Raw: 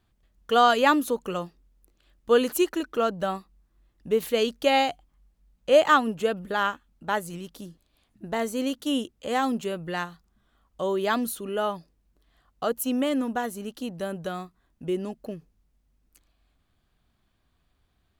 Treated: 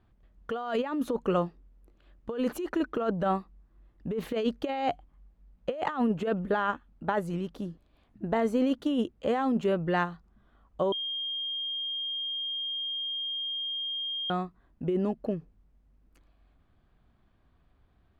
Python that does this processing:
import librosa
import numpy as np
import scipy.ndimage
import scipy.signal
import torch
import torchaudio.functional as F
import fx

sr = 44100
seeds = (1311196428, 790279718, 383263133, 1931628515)

y = fx.edit(x, sr, fx.bleep(start_s=10.92, length_s=3.38, hz=3220.0, db=-18.5), tone=tone)
y = fx.high_shelf(y, sr, hz=5900.0, db=-11.5)
y = fx.over_compress(y, sr, threshold_db=-28.0, ratio=-1.0)
y = fx.high_shelf(y, sr, hz=2800.0, db=-12.0)
y = y * 10.0 ** (1.0 / 20.0)